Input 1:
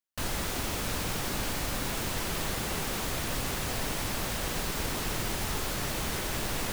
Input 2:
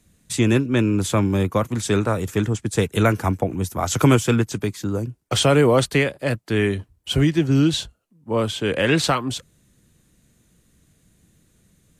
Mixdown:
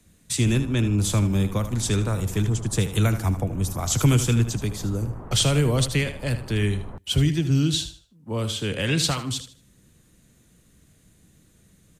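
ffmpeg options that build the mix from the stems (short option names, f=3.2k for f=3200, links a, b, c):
-filter_complex "[0:a]lowpass=f=1.2k:w=0.5412,lowpass=f=1.2k:w=1.3066,adelay=250,volume=-0.5dB[a];[1:a]volume=1.5dB,asplit=2[b][c];[c]volume=-11.5dB,aecho=0:1:77|154|231|308:1|0.26|0.0676|0.0176[d];[a][b][d]amix=inputs=3:normalize=0,acrossover=split=180|3000[e][f][g];[f]acompressor=threshold=-48dB:ratio=1.5[h];[e][h][g]amix=inputs=3:normalize=0"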